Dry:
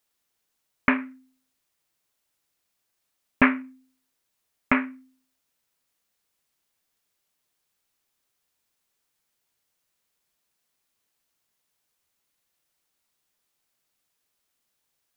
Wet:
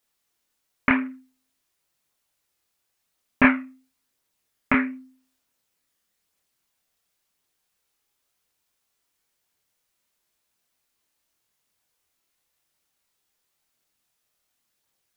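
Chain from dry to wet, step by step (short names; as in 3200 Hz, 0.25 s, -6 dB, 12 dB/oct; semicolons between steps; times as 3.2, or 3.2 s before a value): chorus voices 2, 0.47 Hz, delay 26 ms, depth 1.7 ms; gain +4.5 dB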